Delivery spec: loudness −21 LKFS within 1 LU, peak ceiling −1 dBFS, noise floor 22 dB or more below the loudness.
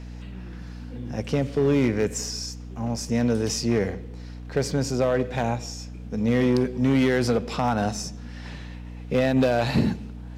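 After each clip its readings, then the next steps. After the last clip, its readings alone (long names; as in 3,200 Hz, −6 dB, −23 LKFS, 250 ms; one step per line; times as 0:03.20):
share of clipped samples 1.1%; peaks flattened at −14.5 dBFS; mains hum 60 Hz; hum harmonics up to 300 Hz; level of the hum −35 dBFS; integrated loudness −24.5 LKFS; sample peak −14.5 dBFS; target loudness −21.0 LKFS
→ clipped peaks rebuilt −14.5 dBFS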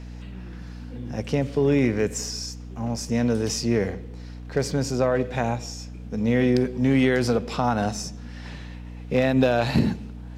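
share of clipped samples 0.0%; mains hum 60 Hz; hum harmonics up to 300 Hz; level of the hum −35 dBFS
→ mains-hum notches 60/120/180/240/300 Hz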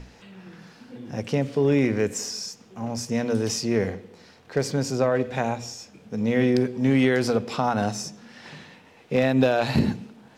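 mains hum none found; integrated loudness −24.5 LKFS; sample peak −8.0 dBFS; target loudness −21.0 LKFS
→ level +3.5 dB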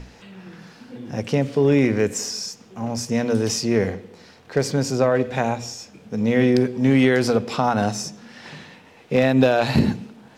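integrated loudness −21.0 LKFS; sample peak −4.5 dBFS; background noise floor −49 dBFS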